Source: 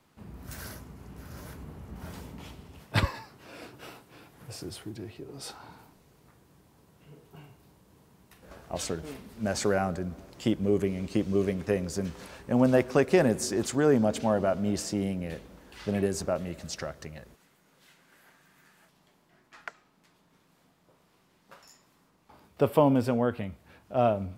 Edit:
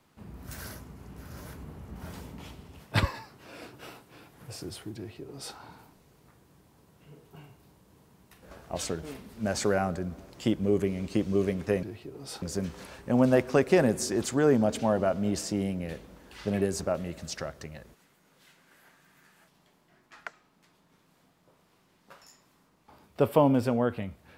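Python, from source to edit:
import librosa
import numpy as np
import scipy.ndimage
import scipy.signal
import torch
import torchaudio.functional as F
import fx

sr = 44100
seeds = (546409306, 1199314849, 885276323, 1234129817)

y = fx.edit(x, sr, fx.duplicate(start_s=4.97, length_s=0.59, to_s=11.83), tone=tone)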